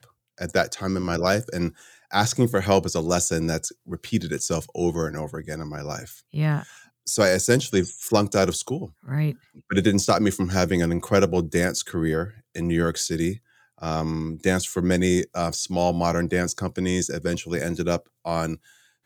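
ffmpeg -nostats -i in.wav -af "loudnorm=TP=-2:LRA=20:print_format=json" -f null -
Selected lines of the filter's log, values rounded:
"input_i" : "-24.5",
"input_tp" : "-5.9",
"input_lra" : "3.9",
"input_thresh" : "-34.8",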